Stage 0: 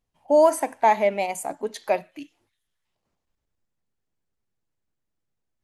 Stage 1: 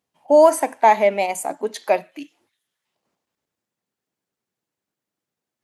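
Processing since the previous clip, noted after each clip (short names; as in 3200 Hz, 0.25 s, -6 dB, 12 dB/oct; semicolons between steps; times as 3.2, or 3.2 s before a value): HPF 190 Hz 12 dB/oct; gain +4.5 dB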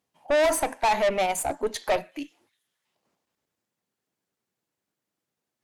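tube stage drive 20 dB, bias 0.4; gain +1.5 dB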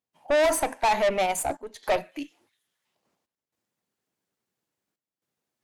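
step gate ".xxxxxxxxxxx." 115 bpm -12 dB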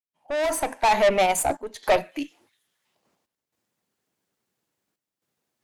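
opening faded in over 1.07 s; gain +4.5 dB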